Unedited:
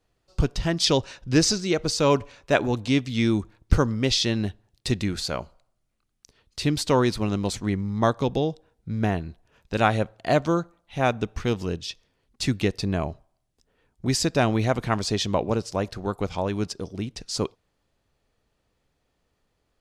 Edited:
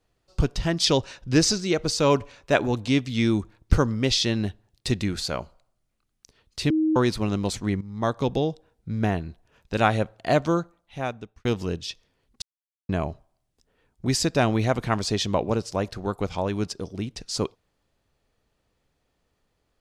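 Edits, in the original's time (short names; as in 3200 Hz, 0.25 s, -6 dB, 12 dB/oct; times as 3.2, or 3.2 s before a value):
6.7–6.96 bleep 314 Hz -18.5 dBFS
7.81–8.26 fade in, from -13.5 dB
10.56–11.45 fade out
12.42–12.89 mute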